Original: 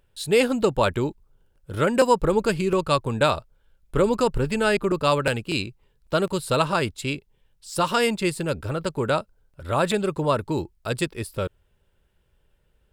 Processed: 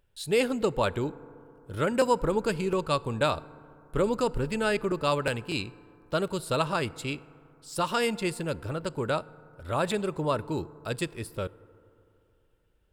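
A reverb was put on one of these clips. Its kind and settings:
feedback delay network reverb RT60 2.8 s, high-frequency decay 0.3×, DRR 19 dB
level −5.5 dB

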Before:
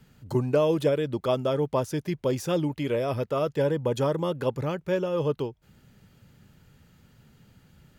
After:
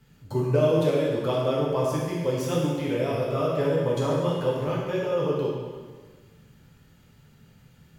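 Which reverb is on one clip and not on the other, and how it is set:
dense smooth reverb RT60 1.5 s, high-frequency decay 0.95×, DRR −5 dB
level −4.5 dB

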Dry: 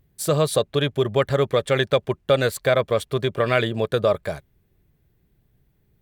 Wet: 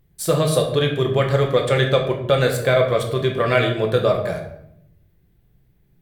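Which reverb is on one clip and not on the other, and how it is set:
rectangular room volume 180 cubic metres, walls mixed, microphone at 0.81 metres

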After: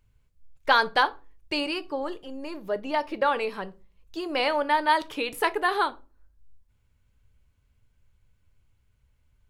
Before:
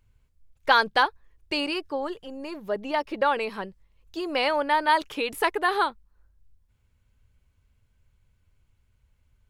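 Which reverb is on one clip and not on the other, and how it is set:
rectangular room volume 150 cubic metres, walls furnished, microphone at 0.37 metres
level −1 dB

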